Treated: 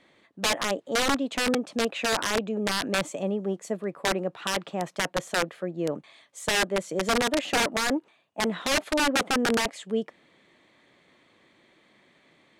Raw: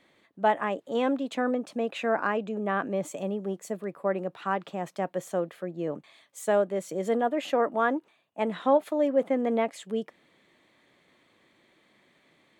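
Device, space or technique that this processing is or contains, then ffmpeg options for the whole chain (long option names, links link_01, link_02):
overflowing digital effects unit: -af "aeval=exprs='(mod(10.6*val(0)+1,2)-1)/10.6':channel_layout=same,lowpass=9200,volume=3dB"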